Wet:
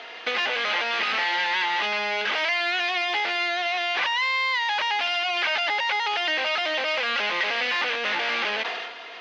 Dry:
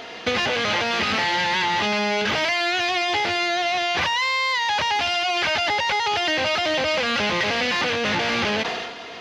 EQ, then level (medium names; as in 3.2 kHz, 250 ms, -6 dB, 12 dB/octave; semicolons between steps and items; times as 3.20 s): band-pass 290–2600 Hz; tilt EQ +3.5 dB/octave; -3.0 dB